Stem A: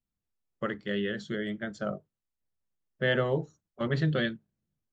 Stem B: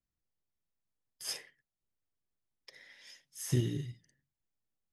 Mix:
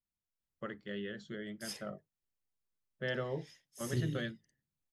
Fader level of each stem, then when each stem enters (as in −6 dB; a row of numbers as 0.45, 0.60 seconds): −10.0, −5.5 decibels; 0.00, 0.40 seconds